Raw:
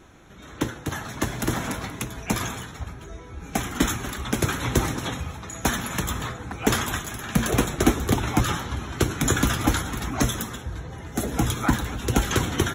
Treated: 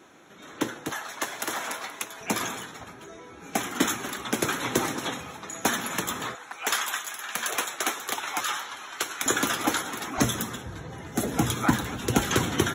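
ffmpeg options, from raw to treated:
-af "asetnsamples=n=441:p=0,asendcmd='0.92 highpass f 600;2.21 highpass f 250;6.35 highpass f 880;9.26 highpass f 340;10.18 highpass f 120',highpass=250"

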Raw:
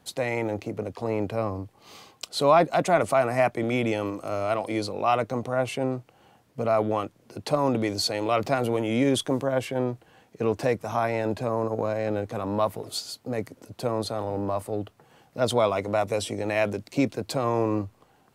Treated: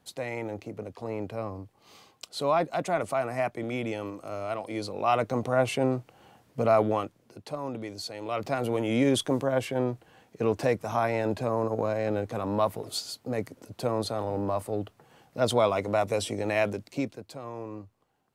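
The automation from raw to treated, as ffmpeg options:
-af "volume=3.76,afade=t=in:st=4.7:d=0.83:silence=0.398107,afade=t=out:st=6.71:d=0.73:silence=0.237137,afade=t=in:st=8.16:d=0.75:silence=0.316228,afade=t=out:st=16.57:d=0.7:silence=0.223872"

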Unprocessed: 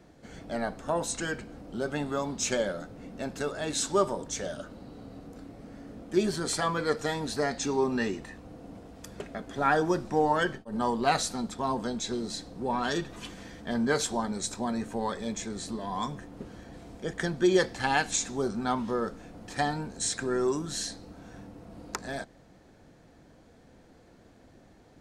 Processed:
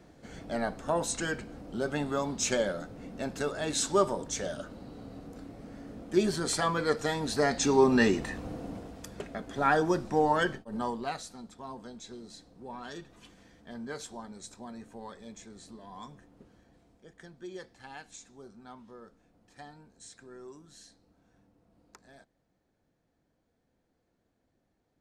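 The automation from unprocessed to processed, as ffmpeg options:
-af "volume=2.51,afade=t=in:st=7.18:d=1.27:silence=0.398107,afade=t=out:st=8.45:d=0.64:silence=0.375837,afade=t=out:st=10.54:d=0.63:silence=0.237137,afade=t=out:st=16.23:d=0.86:silence=0.446684"

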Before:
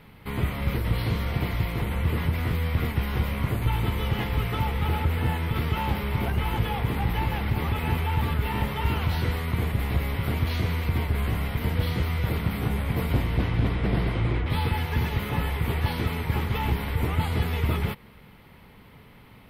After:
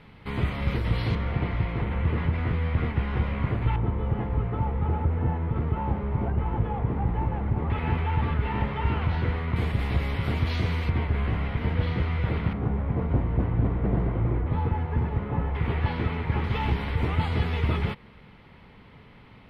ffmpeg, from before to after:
-af "asetnsamples=n=441:p=0,asendcmd='1.15 lowpass f 2300;3.76 lowpass f 1000;7.7 lowpass f 2300;9.56 lowpass f 6000;10.9 lowpass f 2700;12.53 lowpass f 1100;15.55 lowpass f 2500;16.44 lowpass f 4500',lowpass=5400"

